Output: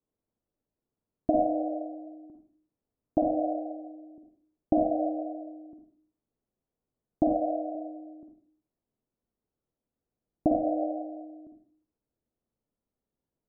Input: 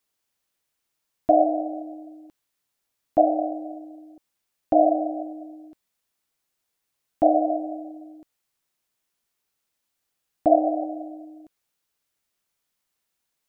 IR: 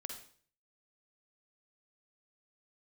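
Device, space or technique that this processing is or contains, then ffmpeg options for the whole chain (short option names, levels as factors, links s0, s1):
television next door: -filter_complex "[0:a]acompressor=threshold=0.1:ratio=6,lowpass=430[s0];[1:a]atrim=start_sample=2205[s1];[s0][s1]afir=irnorm=-1:irlink=0,asettb=1/sr,asplit=3[s2][s3][s4];[s2]atrim=end=7.344[s5];[s3]atrim=start=7.34:end=7.75,asetpts=PTS-STARTPTS,afade=t=in:d=0.004:c=qsin,afade=t=out:st=0.406:d=0.004:c=qsin,equalizer=f=150:w=0.57:g=-6[s6];[s4]atrim=start=7.746[s7];[s5][s6]acrossfade=d=0.004:c1=hsin:c2=qsin[s8];[s8][s7]acrossfade=d=0.004:c1=qsin:c2=hsin,volume=2.66"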